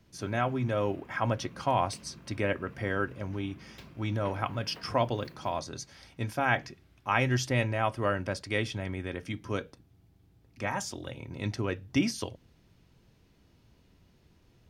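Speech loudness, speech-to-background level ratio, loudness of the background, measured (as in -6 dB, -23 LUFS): -32.0 LUFS, 20.0 dB, -52.0 LUFS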